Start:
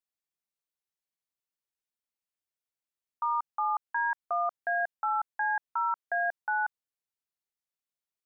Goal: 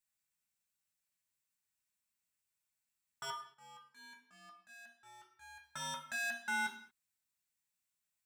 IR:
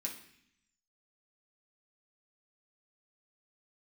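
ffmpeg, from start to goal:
-filter_complex "[0:a]equalizer=f=390:w=0.89:g=-12.5,asoftclip=type=hard:threshold=-39dB,asettb=1/sr,asplit=3[a][b][c];[a]atrim=end=3.304[d];[b]atrim=start=3.3:end=5.64,asetpts=PTS-STARTPTS,afade=t=in:d=0.004:c=qsin,afade=t=out:st=2.336:d=0.004:c=qsin,agate=range=-23dB:threshold=-39dB:ratio=16:detection=peak[e];[c]atrim=start=5.636[f];[d][e]acrossfade=d=0.004:c1=hsin:c2=qsin[g];[g][f]acrossfade=d=0.004:c1=qsin:c2=hsin[h];[1:a]atrim=start_sample=2205,afade=t=out:st=0.29:d=0.01,atrim=end_sample=13230[i];[h][i]afir=irnorm=-1:irlink=0,volume=5.5dB"

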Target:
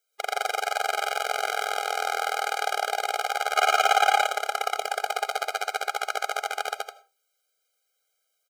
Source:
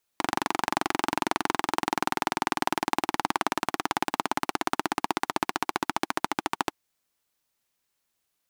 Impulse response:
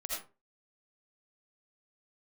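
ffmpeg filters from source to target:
-filter_complex "[0:a]aecho=1:1:122.4|207:0.891|0.447,asplit=3[a][b][c];[a]afade=t=out:st=3.56:d=0.02[d];[b]asplit=2[e][f];[f]highpass=f=720:p=1,volume=23dB,asoftclip=type=tanh:threshold=-5dB[g];[e][g]amix=inputs=2:normalize=0,lowpass=f=7.1k:p=1,volume=-6dB,afade=t=in:st=3.56:d=0.02,afade=t=out:st=4.25:d=0.02[h];[c]afade=t=in:st=4.25:d=0.02[i];[d][h][i]amix=inputs=3:normalize=0,asplit=2[j][k];[1:a]atrim=start_sample=2205[l];[k][l]afir=irnorm=-1:irlink=0,volume=-15dB[m];[j][m]amix=inputs=2:normalize=0,afftfilt=real='re*eq(mod(floor(b*sr/1024/410),2),1)':imag='im*eq(mod(floor(b*sr/1024/410),2),1)':win_size=1024:overlap=0.75,volume=1.5dB"

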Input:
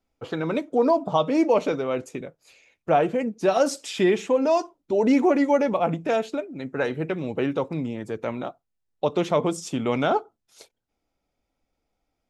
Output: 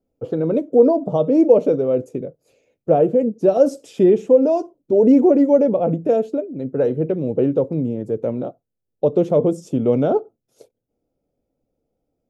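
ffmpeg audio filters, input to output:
-af "equalizer=f=125:t=o:w=1:g=9,equalizer=f=250:t=o:w=1:g=5,equalizer=f=500:t=o:w=1:g=12,equalizer=f=1k:t=o:w=1:g=-7,equalizer=f=2k:t=o:w=1:g=-10,equalizer=f=4k:t=o:w=1:g=-8,equalizer=f=8k:t=o:w=1:g=-5,volume=-2dB"

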